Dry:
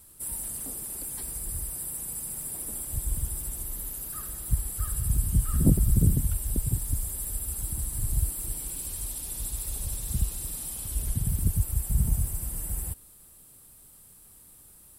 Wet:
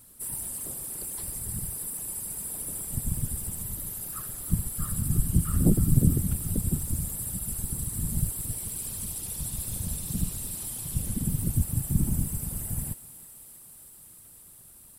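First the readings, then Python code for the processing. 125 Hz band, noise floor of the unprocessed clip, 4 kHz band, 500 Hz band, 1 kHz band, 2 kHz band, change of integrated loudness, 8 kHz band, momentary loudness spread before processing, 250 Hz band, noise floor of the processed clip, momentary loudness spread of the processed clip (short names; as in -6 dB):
+0.5 dB, -53 dBFS, +0.5 dB, +2.5 dB, +0.5 dB, +0.5 dB, 0.0 dB, +0.5 dB, 9 LU, +3.5 dB, -51 dBFS, 19 LU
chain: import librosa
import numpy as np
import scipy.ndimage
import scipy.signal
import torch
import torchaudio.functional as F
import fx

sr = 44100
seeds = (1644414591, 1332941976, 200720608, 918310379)

y = fx.whisperise(x, sr, seeds[0])
y = fx.echo_thinned(y, sr, ms=317, feedback_pct=82, hz=420.0, wet_db=-16)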